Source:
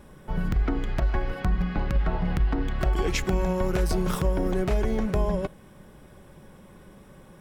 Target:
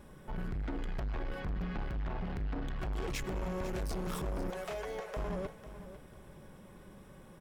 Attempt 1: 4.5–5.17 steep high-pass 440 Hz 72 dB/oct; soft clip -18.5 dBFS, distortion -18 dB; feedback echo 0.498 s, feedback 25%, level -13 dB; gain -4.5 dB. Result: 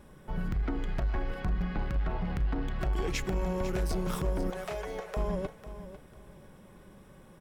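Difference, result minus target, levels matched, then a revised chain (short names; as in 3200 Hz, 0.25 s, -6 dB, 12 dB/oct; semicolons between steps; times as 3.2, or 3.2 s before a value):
soft clip: distortion -10 dB
4.5–5.17 steep high-pass 440 Hz 72 dB/oct; soft clip -29 dBFS, distortion -7 dB; feedback echo 0.498 s, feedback 25%, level -13 dB; gain -4.5 dB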